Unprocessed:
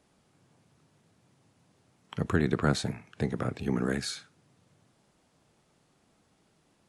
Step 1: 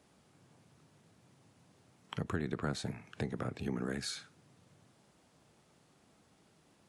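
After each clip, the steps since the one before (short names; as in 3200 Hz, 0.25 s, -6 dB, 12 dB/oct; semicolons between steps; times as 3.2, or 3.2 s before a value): HPF 50 Hz; compressor 2.5:1, threshold -38 dBFS, peak gain reduction 12 dB; gain +1 dB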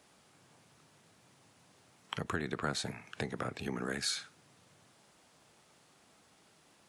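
low shelf 480 Hz -10 dB; gain +6 dB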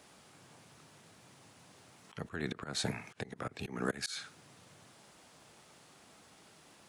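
auto swell 0.22 s; gain +5 dB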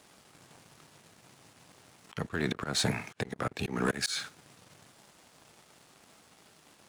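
sample leveller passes 2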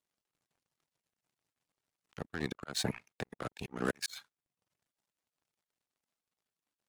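power-law curve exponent 2; reverb removal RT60 0.57 s; gain +1 dB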